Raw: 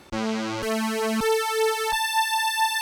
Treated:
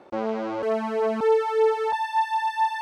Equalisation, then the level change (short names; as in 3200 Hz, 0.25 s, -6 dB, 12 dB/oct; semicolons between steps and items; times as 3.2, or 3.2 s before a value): band-pass 570 Hz, Q 1.3; +5.0 dB